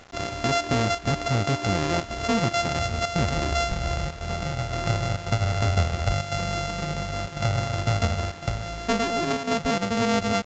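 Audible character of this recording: a buzz of ramps at a fixed pitch in blocks of 64 samples; chopped level 0.95 Hz, depth 65%, duty 90%; a quantiser's noise floor 8-bit, dither none; µ-law

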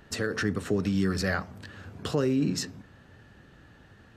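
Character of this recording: noise floor -56 dBFS; spectral tilt -5.5 dB/oct

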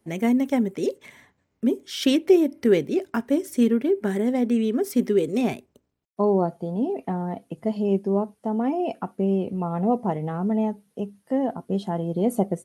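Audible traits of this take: noise floor -72 dBFS; spectral tilt -6.5 dB/oct

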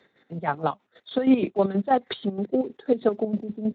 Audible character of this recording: chopped level 6.3 Hz, depth 65%, duty 45%; Speex

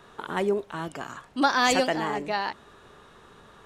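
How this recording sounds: noise floor -54 dBFS; spectral tilt -3.5 dB/oct

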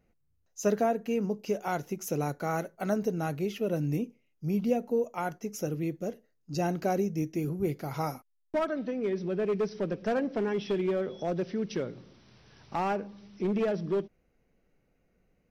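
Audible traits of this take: noise floor -72 dBFS; spectral tilt -5.0 dB/oct

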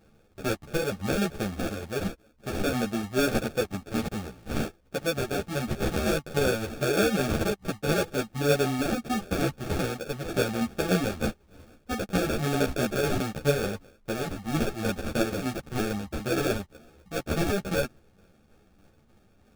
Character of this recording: tremolo saw down 3.3 Hz, depth 45%; aliases and images of a low sample rate 1000 Hz, jitter 0%; a shimmering, thickened sound

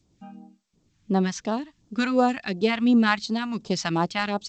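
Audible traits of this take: phasing stages 2, 2.8 Hz, lowest notch 380–2200 Hz; tremolo triangle 1.1 Hz, depth 50%; G.722

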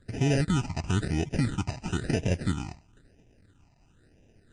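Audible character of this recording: aliases and images of a low sample rate 1100 Hz, jitter 0%; phasing stages 8, 1 Hz, lowest notch 450–1300 Hz; MP3

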